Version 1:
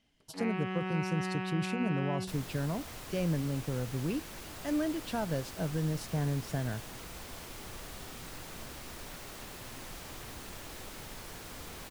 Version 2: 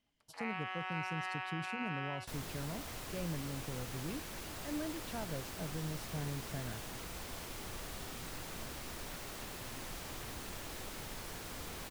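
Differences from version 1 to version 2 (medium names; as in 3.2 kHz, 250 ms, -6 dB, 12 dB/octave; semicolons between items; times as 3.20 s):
speech -9.0 dB; first sound: add high-pass 660 Hz 24 dB/octave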